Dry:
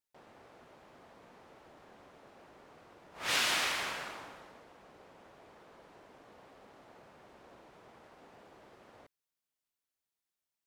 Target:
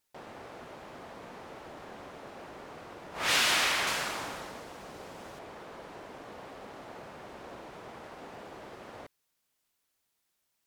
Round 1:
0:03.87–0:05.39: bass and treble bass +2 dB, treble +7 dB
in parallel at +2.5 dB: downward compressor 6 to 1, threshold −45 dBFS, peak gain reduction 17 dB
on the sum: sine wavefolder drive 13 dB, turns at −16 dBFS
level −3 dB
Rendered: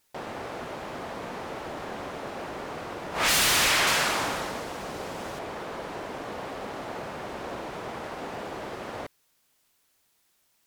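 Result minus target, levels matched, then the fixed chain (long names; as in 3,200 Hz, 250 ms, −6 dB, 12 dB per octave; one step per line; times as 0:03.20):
sine wavefolder: distortion +19 dB
0:03.87–0:05.39: bass and treble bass +2 dB, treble +7 dB
in parallel at +2.5 dB: downward compressor 6 to 1, threshold −45 dBFS, peak gain reduction 17 dB
on the sum: sine wavefolder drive 3 dB, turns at −16 dBFS
level −3 dB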